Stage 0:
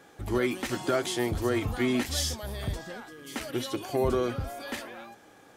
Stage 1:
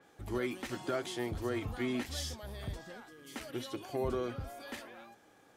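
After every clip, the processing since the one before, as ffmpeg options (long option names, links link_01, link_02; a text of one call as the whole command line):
ffmpeg -i in.wav -af "adynamicequalizer=threshold=0.00447:dfrequency=5000:dqfactor=0.7:tfrequency=5000:tqfactor=0.7:attack=5:release=100:ratio=0.375:range=2.5:mode=cutabove:tftype=highshelf,volume=-8dB" out.wav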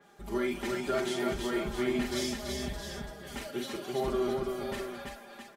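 ffmpeg -i in.wav -filter_complex "[0:a]aecho=1:1:5:0.84,asplit=2[link_01][link_02];[link_02]aecho=0:1:45|209|334|586|667:0.501|0.237|0.668|0.1|0.398[link_03];[link_01][link_03]amix=inputs=2:normalize=0" out.wav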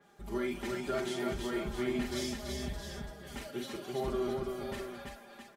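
ffmpeg -i in.wav -af "equalizer=frequency=77:width=0.58:gain=4.5,volume=-4dB" out.wav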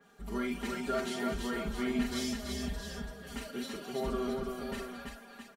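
ffmpeg -i in.wav -af "aecho=1:1:4.3:0.64" out.wav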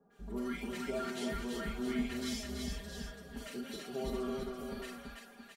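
ffmpeg -i in.wav -filter_complex "[0:a]acrossover=split=1000[link_01][link_02];[link_02]adelay=100[link_03];[link_01][link_03]amix=inputs=2:normalize=0,volume=-3dB" out.wav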